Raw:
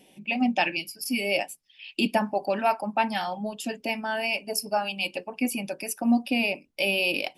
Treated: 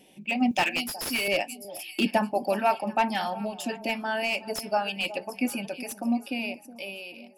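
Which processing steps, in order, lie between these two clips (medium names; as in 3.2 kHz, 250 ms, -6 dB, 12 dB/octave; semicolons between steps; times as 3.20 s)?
fade out at the end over 2.11 s; 0.51–1.28 s: RIAA curve recording; echo whose repeats swap between lows and highs 368 ms, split 920 Hz, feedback 57%, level -14 dB; slew-rate limiter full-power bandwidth 190 Hz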